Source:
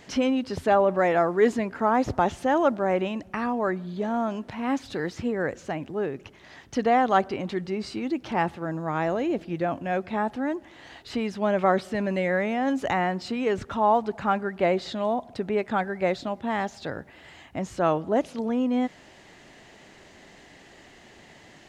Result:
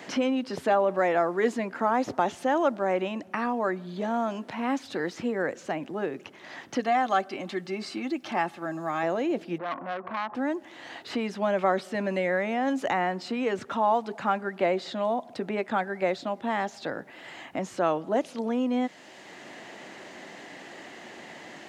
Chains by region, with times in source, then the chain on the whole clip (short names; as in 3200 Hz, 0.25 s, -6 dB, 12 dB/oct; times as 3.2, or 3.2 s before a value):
6.8–9.03 tilt +1.5 dB/oct + notch comb 480 Hz
9.58–10.35 compressor 4:1, threshold -33 dBFS + synth low-pass 1100 Hz, resonance Q 8 + core saturation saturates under 1400 Hz
whole clip: HPF 220 Hz 12 dB/oct; notch 420 Hz, Q 14; three-band squash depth 40%; gain -1 dB